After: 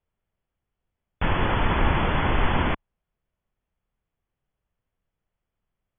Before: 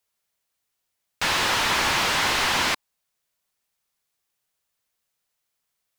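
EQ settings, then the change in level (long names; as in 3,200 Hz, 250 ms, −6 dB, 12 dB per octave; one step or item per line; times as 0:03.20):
linear-phase brick-wall low-pass 3,500 Hz
spectral tilt −4.5 dB per octave
−1.5 dB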